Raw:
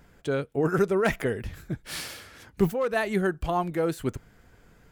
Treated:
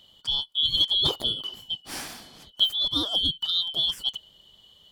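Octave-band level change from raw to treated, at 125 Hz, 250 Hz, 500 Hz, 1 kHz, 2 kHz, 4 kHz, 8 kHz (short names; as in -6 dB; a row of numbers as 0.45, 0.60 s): -11.0, -11.5, -17.0, -11.0, -15.0, +22.5, +0.5 dB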